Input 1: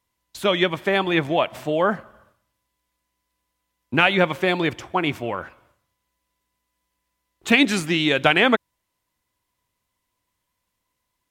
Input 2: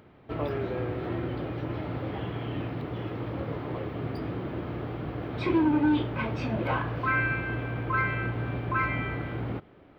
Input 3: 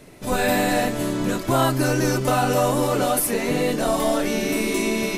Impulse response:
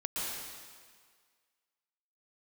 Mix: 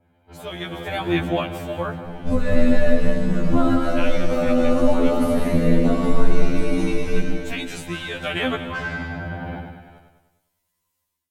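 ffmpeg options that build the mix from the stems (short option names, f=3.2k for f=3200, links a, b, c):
-filter_complex "[0:a]highshelf=f=6.2k:g=11,volume=-17dB,asplit=3[a][b][c];[b]volume=-14dB[d];[1:a]aecho=1:1:1.3:0.66,asoftclip=type=tanh:threshold=-25dB,adynamicequalizer=threshold=0.00631:dfrequency=1800:dqfactor=0.7:tfrequency=1800:tqfactor=0.7:attack=5:release=100:ratio=0.375:range=3.5:mode=cutabove:tftype=highshelf,volume=-7.5dB,asplit=2[e][f];[f]volume=-5.5dB[g];[2:a]aemphasis=mode=reproduction:type=riaa,adelay=2050,volume=-0.5dB,asplit=3[h][i][j];[i]volume=-10dB[k];[j]volume=-18dB[l];[c]apad=whole_len=318823[m];[h][m]sidechaincompress=threshold=-50dB:ratio=12:attack=32:release=353[n];[e][n]amix=inputs=2:normalize=0,lowshelf=f=100:g=-4.5,acompressor=threshold=-22dB:ratio=16,volume=0dB[o];[3:a]atrim=start_sample=2205[p];[d][k]amix=inputs=2:normalize=0[q];[q][p]afir=irnorm=-1:irlink=0[r];[g][l]amix=inputs=2:normalize=0,aecho=0:1:101|202|303|404|505|606|707|808:1|0.52|0.27|0.141|0.0731|0.038|0.0198|0.0103[s];[a][o][r][s]amix=inputs=4:normalize=0,lowshelf=f=260:g=3,dynaudnorm=f=580:g=3:m=15dB,afftfilt=real='re*2*eq(mod(b,4),0)':imag='im*2*eq(mod(b,4),0)':win_size=2048:overlap=0.75"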